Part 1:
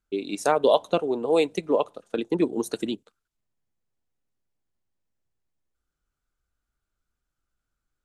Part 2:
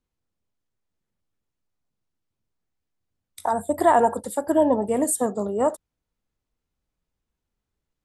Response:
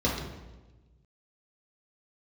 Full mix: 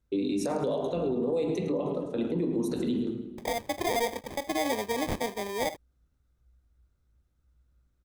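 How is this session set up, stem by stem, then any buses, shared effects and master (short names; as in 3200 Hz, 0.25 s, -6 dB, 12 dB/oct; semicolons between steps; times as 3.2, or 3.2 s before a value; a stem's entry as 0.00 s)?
-4.0 dB, 0.00 s, send -10 dB, echo send -11.5 dB, low shelf 270 Hz +10 dB; compressor, threshold -23 dBFS, peak gain reduction 11 dB
-5.5 dB, 0.00 s, no send, no echo send, bell 160 Hz -11.5 dB 0.97 oct; sample-rate reducer 1400 Hz, jitter 0%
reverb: on, RT60 1.2 s, pre-delay 3 ms
echo: feedback echo 0.107 s, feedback 40%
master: limiter -21.5 dBFS, peak gain reduction 11 dB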